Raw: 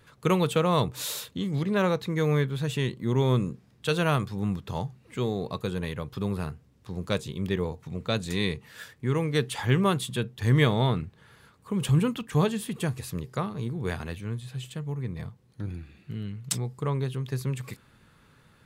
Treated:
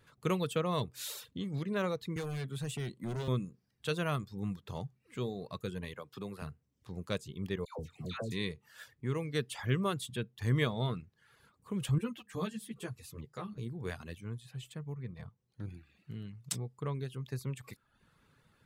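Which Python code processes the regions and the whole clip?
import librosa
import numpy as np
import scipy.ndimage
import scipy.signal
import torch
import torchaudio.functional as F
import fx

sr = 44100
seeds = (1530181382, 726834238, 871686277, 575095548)

y = fx.chain(x, sr, fx.peak_eq(hz=8900.0, db=10.0, octaves=0.64),
    fx.clip_hard(threshold_db=-25.5),
    fx.band_squash(depth_pct=40), at=(2.16, 3.28))
y = fx.chain(y, sr, fx.highpass(hz=290.0, slope=6),
    fx.band_squash(depth_pct=40), at=(5.94, 6.42))
y = fx.chain(y, sr, fx.high_shelf(hz=2200.0, db=-8.0),
    fx.dispersion(late='lows', ms=135.0, hz=1100.0),
    fx.band_squash(depth_pct=70), at=(7.65, 8.32))
y = fx.chain(y, sr, fx.highpass(hz=40.0, slope=12),
    fx.hum_notches(base_hz=50, count=4),
    fx.ensemble(), at=(11.98, 13.58))
y = fx.chain(y, sr, fx.high_shelf(hz=7500.0, db=-11.5),
    fx.notch(hz=300.0, q=7.3), at=(14.94, 15.61))
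y = fx.dereverb_blind(y, sr, rt60_s=0.62)
y = fx.dynamic_eq(y, sr, hz=860.0, q=4.2, threshold_db=-50.0, ratio=4.0, max_db=-5)
y = F.gain(torch.from_numpy(y), -7.5).numpy()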